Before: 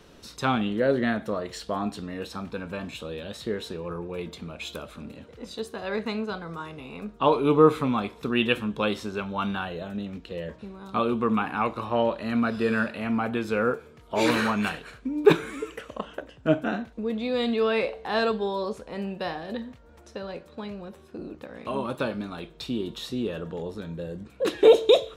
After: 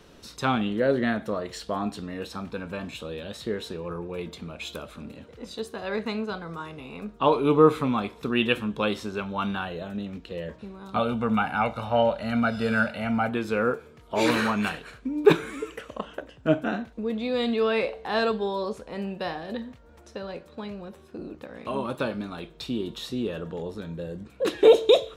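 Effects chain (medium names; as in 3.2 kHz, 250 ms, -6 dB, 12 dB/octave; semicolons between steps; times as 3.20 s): 10.96–13.29 s: comb 1.4 ms, depth 73%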